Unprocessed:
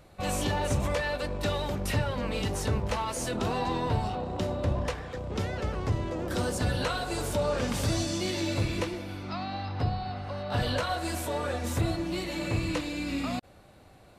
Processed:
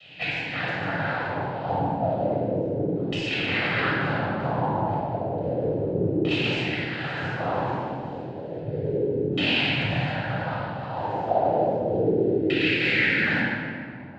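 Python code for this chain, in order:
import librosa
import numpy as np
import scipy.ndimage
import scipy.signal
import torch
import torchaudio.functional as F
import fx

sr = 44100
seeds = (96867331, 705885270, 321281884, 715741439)

y = fx.high_shelf_res(x, sr, hz=2200.0, db=10.0, q=3.0)
y = fx.over_compress(y, sr, threshold_db=-28.0, ratio=-0.5)
y = fx.noise_vocoder(y, sr, seeds[0], bands=8)
y = fx.filter_lfo_lowpass(y, sr, shape='saw_down', hz=0.32, low_hz=310.0, high_hz=2900.0, q=4.4)
y = fx.room_shoebox(y, sr, seeds[1], volume_m3=3400.0, walls='mixed', distance_m=6.4)
y = y * 10.0 ** (-7.0 / 20.0)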